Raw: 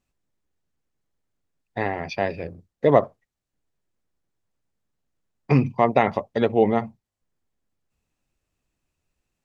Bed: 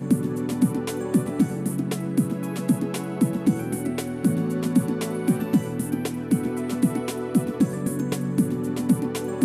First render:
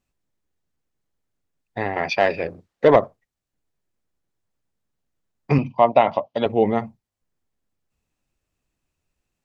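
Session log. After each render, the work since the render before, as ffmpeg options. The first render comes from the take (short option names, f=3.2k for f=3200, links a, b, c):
-filter_complex "[0:a]asettb=1/sr,asplit=3[a][b][c];[a]atrim=end=1.964[d];[b]atrim=start=1.96:end=2.96,asetpts=PTS-STARTPTS,afade=t=in:d=0.004:c=qsin,afade=t=out:st=0.996:d=0.004:c=qsin,asplit=2[e][f];[f]highpass=f=720:p=1,volume=17dB,asoftclip=type=tanh:threshold=-2dB[g];[e][g]amix=inputs=2:normalize=0,lowpass=f=3.2k:p=1,volume=-6dB[h];[c]atrim=start=2.956[i];[d][h]acrossfade=d=0.004:c1=hsin:c2=qsin[j];[j][i]acrossfade=d=0.004:c1=qsin:c2=hsin,asettb=1/sr,asplit=3[k][l][m];[k]atrim=end=5.584[n];[l]atrim=start=5.58:end=6.46,asetpts=PTS-STARTPTS,afade=t=in:d=0.004:c=qsin,afade=t=out:st=0.876:d=0.004:c=qsin,highpass=150,equalizer=f=200:t=q:w=4:g=-5,equalizer=f=410:t=q:w=4:g=-9,equalizer=f=630:t=q:w=4:g=8,equalizer=f=970:t=q:w=4:g=5,equalizer=f=1.8k:t=q:w=4:g=-8,equalizer=f=3k:t=q:w=4:g=8,lowpass=f=5.4k:w=0.5412,lowpass=f=5.4k:w=1.3066[o];[m]atrim=start=6.456[p];[n][o]acrossfade=d=0.004:c1=hsin:c2=qsin[q];[q][p]acrossfade=d=0.004:c1=qsin:c2=hsin"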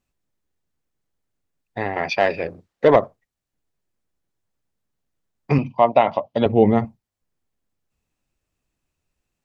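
-filter_complex "[0:a]asettb=1/sr,asplit=3[a][b][c];[a]atrim=end=6.244[d];[b]atrim=start=6.24:end=6.85,asetpts=PTS-STARTPTS,afade=t=in:d=0.004:c=qsin,afade=t=out:st=0.606:d=0.004:c=qsin,lowshelf=f=280:g=10[e];[c]atrim=start=6.846[f];[d][e]acrossfade=d=0.004:c1=hsin:c2=qsin[g];[g][f]acrossfade=d=0.004:c1=qsin:c2=hsin"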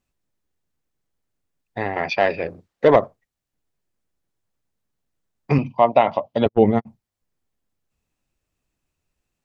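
-filter_complex "[0:a]asettb=1/sr,asplit=3[a][b][c];[a]atrim=end=2.024[d];[b]atrim=start=2.02:end=2.47,asetpts=PTS-STARTPTS,afade=t=in:d=0.004:c=qsin,afade=t=out:st=0.446:d=0.004:c=qsin,lowpass=5.5k[e];[c]atrim=start=2.466[f];[d][e]acrossfade=d=0.004:c1=hsin:c2=qsin[g];[g][f]acrossfade=d=0.004:c1=qsin:c2=hsin,asplit=3[h][i][j];[h]afade=t=out:st=6.44:d=0.02[k];[i]agate=range=-56dB:threshold=-17dB:ratio=16:release=100:detection=peak,afade=t=in:st=6.44:d=0.02,afade=t=out:st=6.85:d=0.02[l];[j]afade=t=in:st=6.85:d=0.02[m];[k][l][m]amix=inputs=3:normalize=0"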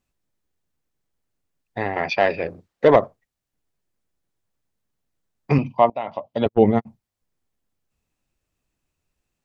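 -filter_complex "[0:a]asplit=2[a][b];[a]atrim=end=5.9,asetpts=PTS-STARTPTS,afade=t=out:st=5.896:d=0.004:c=hsin:silence=0.1[c];[b]atrim=start=5.9,asetpts=PTS-STARTPTS,afade=t=in:d=0.72:silence=0.1[d];[c][d]concat=n=2:v=0:a=1"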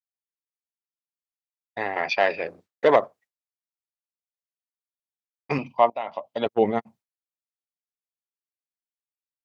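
-af "highpass=f=610:p=1,agate=range=-33dB:threshold=-47dB:ratio=3:detection=peak"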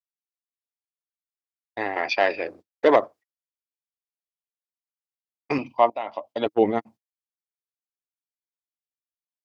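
-af "agate=range=-17dB:threshold=-45dB:ratio=16:detection=peak,equalizer=f=160:t=o:w=0.33:g=-11,equalizer=f=315:t=o:w=0.33:g=7,equalizer=f=5k:t=o:w=0.33:g=3"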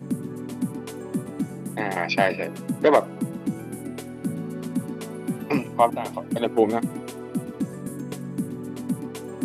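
-filter_complex "[1:a]volume=-7dB[a];[0:a][a]amix=inputs=2:normalize=0"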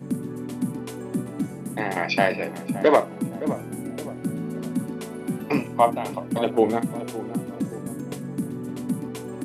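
-filter_complex "[0:a]asplit=2[a][b];[b]adelay=41,volume=-13dB[c];[a][c]amix=inputs=2:normalize=0,asplit=2[d][e];[e]adelay=568,lowpass=f=970:p=1,volume=-12dB,asplit=2[f][g];[g]adelay=568,lowpass=f=970:p=1,volume=0.47,asplit=2[h][i];[i]adelay=568,lowpass=f=970:p=1,volume=0.47,asplit=2[j][k];[k]adelay=568,lowpass=f=970:p=1,volume=0.47,asplit=2[l][m];[m]adelay=568,lowpass=f=970:p=1,volume=0.47[n];[d][f][h][j][l][n]amix=inputs=6:normalize=0"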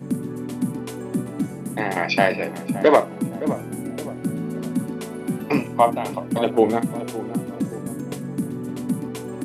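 -af "volume=2.5dB,alimiter=limit=-3dB:level=0:latency=1"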